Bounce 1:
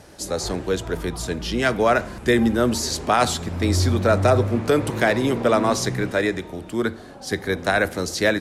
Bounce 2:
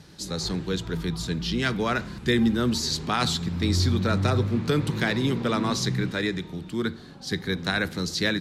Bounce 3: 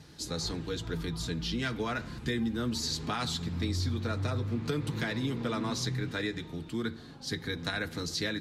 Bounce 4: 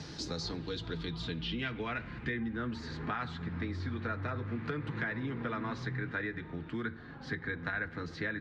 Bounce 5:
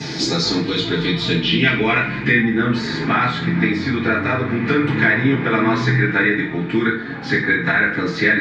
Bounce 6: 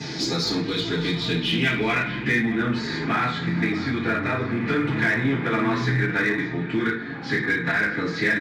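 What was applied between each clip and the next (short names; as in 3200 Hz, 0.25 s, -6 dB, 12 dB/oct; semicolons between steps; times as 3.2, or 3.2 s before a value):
fifteen-band EQ 160 Hz +11 dB, 630 Hz -10 dB, 4000 Hz +8 dB, 10000 Hz -5 dB; gain -5 dB
compressor 4:1, threshold -26 dBFS, peak gain reduction 7.5 dB; notch comb 190 Hz; gain -2 dB
low-pass sweep 5500 Hz -> 1700 Hz, 0.28–2.66; three-band squash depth 70%; gain -5.5 dB
reverb RT60 0.45 s, pre-delay 3 ms, DRR -14 dB; gain +8.5 dB
echo 0.629 s -17 dB; in parallel at -4.5 dB: overloaded stage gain 16 dB; on the sum: gain -9 dB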